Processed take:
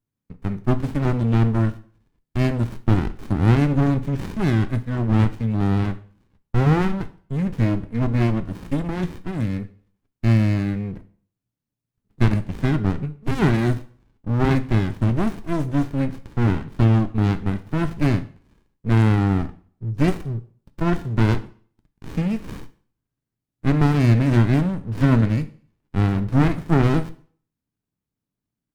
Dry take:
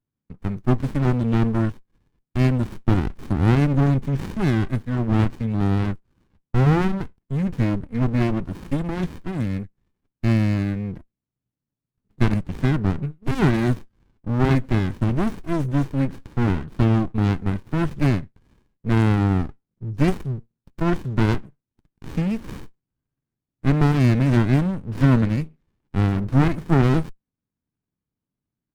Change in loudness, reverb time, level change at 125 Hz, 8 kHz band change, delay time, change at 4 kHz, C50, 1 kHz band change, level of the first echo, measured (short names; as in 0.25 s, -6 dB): +0.5 dB, 0.45 s, +1.0 dB, n/a, none, +0.5 dB, 16.5 dB, +0.5 dB, none